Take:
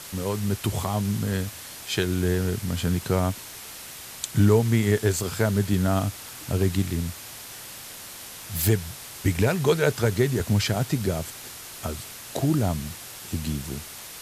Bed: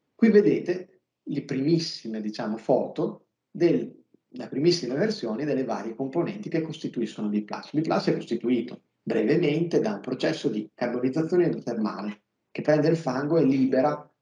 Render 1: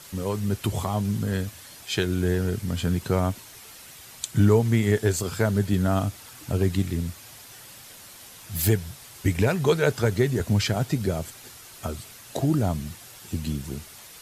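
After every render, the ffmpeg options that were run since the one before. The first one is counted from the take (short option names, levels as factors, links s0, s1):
-af "afftdn=nr=7:nf=-41"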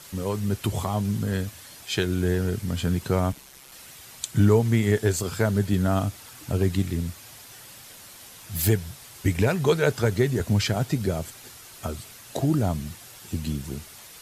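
-filter_complex "[0:a]asettb=1/sr,asplit=3[s0][s1][s2];[s0]atrim=end=3.324[s3];[s1]atrim=start=3.32:end=3.72,asetpts=PTS-STARTPTS,afade=t=in:d=0.004:c=qsin,afade=t=out:st=0.396:d=0.004:c=qsin,aeval=exprs='val(0)*sin(2*PI*67*n/s)':c=same[s4];[s2]atrim=start=3.716[s5];[s3][s4]acrossfade=d=0.004:c1=hsin:c2=qsin[s6];[s6][s5]acrossfade=d=0.004:c1=qsin:c2=hsin"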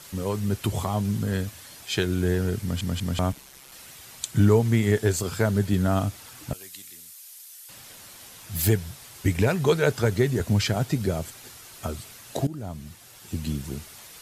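-filter_complex "[0:a]asettb=1/sr,asplit=3[s0][s1][s2];[s0]atrim=end=6.534[s3];[s1]atrim=start=6.53:end=7.69,asetpts=PTS-STARTPTS,afade=t=in:d=0.004:c=qsin,afade=t=out:st=1.156:d=0.004:c=qsin,aderivative[s4];[s2]atrim=start=7.686[s5];[s3][s4]acrossfade=d=0.004:c1=hsin:c2=qsin[s6];[s6][s5]acrossfade=d=0.004:c1=qsin:c2=hsin,asplit=5[s7][s8][s9][s10][s11];[s7]atrim=end=2.812[s12];[s8]atrim=start=2.618:end=2.812[s13];[s9]atrim=start=2.618:end=2.812[s14];[s10]atrim=start=3.188:end=12.47,asetpts=PTS-STARTPTS,afade=t=out:st=9.278:d=0.004:c=hsin:silence=0.141254[s15];[s11]atrim=start=12.47,asetpts=PTS-STARTPTS,afade=t=in:d=1.04:silence=0.141254[s16];[s12][s13]acrossfade=d=0.004:c1=hsin:c2=hsin[s17];[s17][s14]acrossfade=d=0.004:c1=hsin:c2=hsin[s18];[s15][s16]concat=n=2:v=0:a=1[s19];[s18][s19]acrossfade=d=0.004:c1=hsin:c2=hsin"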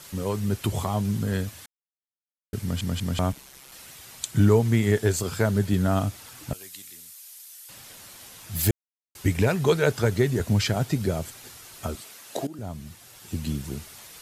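-filter_complex "[0:a]asettb=1/sr,asplit=3[s0][s1][s2];[s0]atrim=end=11.954[s3];[s1]atrim=start=11.95:end=12.59,asetpts=PTS-STARTPTS,afade=t=in:d=0.004:c=qsin,afade=t=out:st=0.636:d=0.004:c=qsin,highpass=270[s4];[s2]atrim=start=12.586[s5];[s3][s4]acrossfade=d=0.004:c1=hsin:c2=qsin[s6];[s6][s5]acrossfade=d=0.004:c1=qsin:c2=hsin,asplit=5[s7][s8][s9][s10][s11];[s7]atrim=end=1.66,asetpts=PTS-STARTPTS,afade=t=out:st=1.656:d=0.004:c=hsin[s12];[s8]atrim=start=1.66:end=2.53,asetpts=PTS-STARTPTS,volume=0[s13];[s9]atrim=start=2.53:end=8.71,asetpts=PTS-STARTPTS,afade=t=in:d=0.004:c=hsin,afade=t=out:st=6.176:d=0.004:c=hsin[s14];[s10]atrim=start=8.71:end=9.15,asetpts=PTS-STARTPTS,volume=0[s15];[s11]atrim=start=9.15,asetpts=PTS-STARTPTS,afade=t=in:d=0.004:c=hsin[s16];[s12][s13][s14][s15][s16]concat=n=5:v=0:a=1"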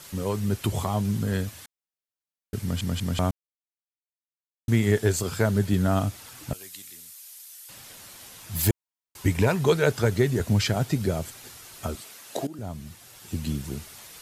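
-filter_complex "[0:a]asettb=1/sr,asplit=3[s0][s1][s2];[s0]atrim=end=8.514[s3];[s1]atrim=start=8.51:end=9.62,asetpts=PTS-STARTPTS,afade=t=in:d=0.004:c=qsin,afade=t=out:st=1.106:d=0.004:c=qsin,equalizer=f=970:t=o:w=0.27:g=7.5[s4];[s2]atrim=start=9.616[s5];[s3][s4]acrossfade=d=0.004:c1=hsin:c2=qsin[s6];[s6][s5]acrossfade=d=0.004:c1=qsin:c2=hsin,asplit=3[s7][s8][s9];[s7]atrim=end=3.31,asetpts=PTS-STARTPTS,afade=t=out:st=3.306:d=0.004:c=hsin[s10];[s8]atrim=start=3.31:end=4.68,asetpts=PTS-STARTPTS,volume=0[s11];[s9]atrim=start=4.68,asetpts=PTS-STARTPTS,afade=t=in:d=0.004:c=hsin[s12];[s10][s11][s12]concat=n=3:v=0:a=1"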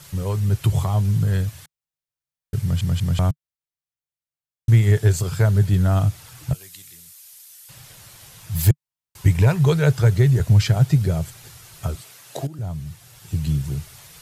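-af "lowshelf=f=180:t=q:w=3:g=6.5"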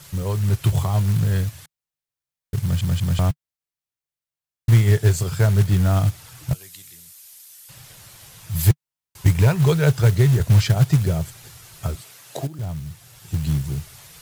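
-af "acrusher=bits=5:mode=log:mix=0:aa=0.000001"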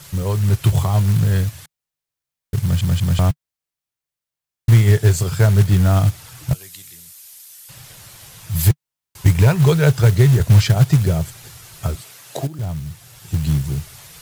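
-af "volume=1.5,alimiter=limit=0.708:level=0:latency=1"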